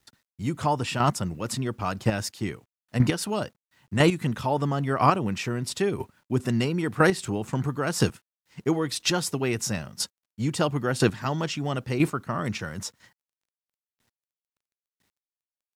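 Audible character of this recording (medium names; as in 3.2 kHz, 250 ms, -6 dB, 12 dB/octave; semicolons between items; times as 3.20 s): chopped level 1 Hz, depth 60%, duty 10%; a quantiser's noise floor 12-bit, dither none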